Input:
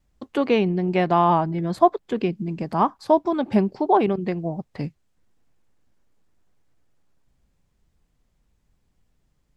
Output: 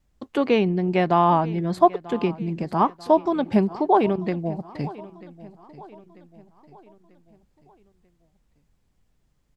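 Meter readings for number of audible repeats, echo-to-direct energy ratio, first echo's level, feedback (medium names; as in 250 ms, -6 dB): 3, -18.0 dB, -19.0 dB, 46%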